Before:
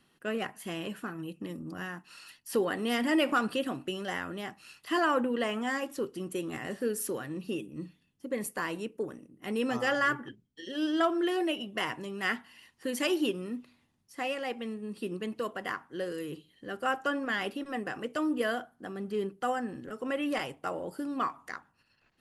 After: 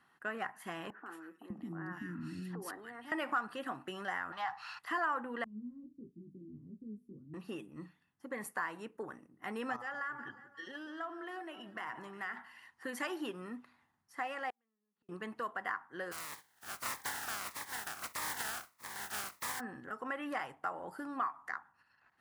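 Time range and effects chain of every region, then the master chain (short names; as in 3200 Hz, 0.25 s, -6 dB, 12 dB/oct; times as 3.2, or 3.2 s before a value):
0.9–3.12 resonant low shelf 440 Hz +13 dB, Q 1.5 + compressor 10:1, threshold -29 dBFS + three bands offset in time mids, highs, lows 0.16/0.6 s, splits 380/1800 Hz
4.32–4.79 G.711 law mismatch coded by mu + EQ curve 120 Hz 0 dB, 220 Hz -16 dB, 390 Hz -16 dB, 840 Hz +8 dB, 1900 Hz +1 dB, 4600 Hz +7 dB, 8900 Hz -11 dB
5.44–7.34 sample leveller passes 1 + inverse Chebyshev low-pass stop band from 680 Hz, stop band 50 dB + chorus 1.5 Hz, delay 17.5 ms, depth 3.5 ms
9.76–12.37 compressor 5:1, threshold -38 dBFS + echo with dull and thin repeats by turns 0.179 s, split 1600 Hz, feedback 64%, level -14 dB
14.5–15.09 LPF 3000 Hz + compressor 4:1, threshold -44 dBFS + flipped gate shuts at -43 dBFS, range -33 dB
16.11–19.59 spectral contrast lowered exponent 0.1 + cascading phaser falling 1.6 Hz
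whole clip: HPF 50 Hz; band shelf 1200 Hz +12.5 dB; compressor 2:1, threshold -30 dBFS; gain -8 dB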